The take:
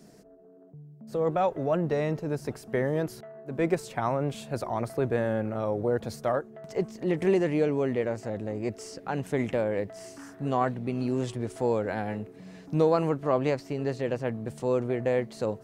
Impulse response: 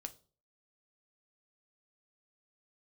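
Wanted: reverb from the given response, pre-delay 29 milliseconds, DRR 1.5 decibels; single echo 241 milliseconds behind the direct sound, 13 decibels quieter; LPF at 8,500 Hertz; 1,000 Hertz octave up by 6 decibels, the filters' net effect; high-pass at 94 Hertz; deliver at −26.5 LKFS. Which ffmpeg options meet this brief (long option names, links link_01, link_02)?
-filter_complex "[0:a]highpass=94,lowpass=8500,equalizer=frequency=1000:width_type=o:gain=8,aecho=1:1:241:0.224,asplit=2[link_01][link_02];[1:a]atrim=start_sample=2205,adelay=29[link_03];[link_02][link_03]afir=irnorm=-1:irlink=0,volume=2.5dB[link_04];[link_01][link_04]amix=inputs=2:normalize=0,volume=-2dB"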